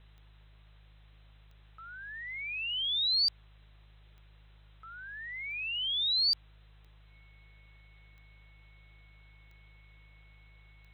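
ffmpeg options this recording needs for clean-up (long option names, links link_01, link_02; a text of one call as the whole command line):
ffmpeg -i in.wav -af "adeclick=threshold=4,bandreject=frequency=52:width_type=h:width=4,bandreject=frequency=104:width_type=h:width=4,bandreject=frequency=156:width_type=h:width=4,bandreject=frequency=2200:width=30,afftdn=noise_reduction=22:noise_floor=-58" out.wav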